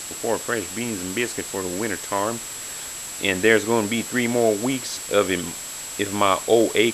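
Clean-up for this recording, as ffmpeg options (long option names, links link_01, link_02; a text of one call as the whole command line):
ffmpeg -i in.wav -af "bandreject=frequency=7700:width=30,afftdn=noise_reduction=30:noise_floor=-34" out.wav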